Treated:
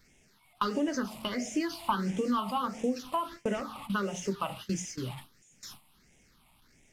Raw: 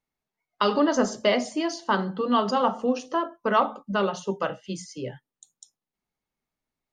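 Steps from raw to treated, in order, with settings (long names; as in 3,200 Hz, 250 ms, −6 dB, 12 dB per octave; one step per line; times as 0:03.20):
linear delta modulator 64 kbit/s, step −36 dBFS
downward compressor 6 to 1, threshold −26 dBFS, peak gain reduction 9.5 dB
noise gate with hold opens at −30 dBFS
all-pass phaser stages 6, 1.5 Hz, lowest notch 420–1,200 Hz
level +2 dB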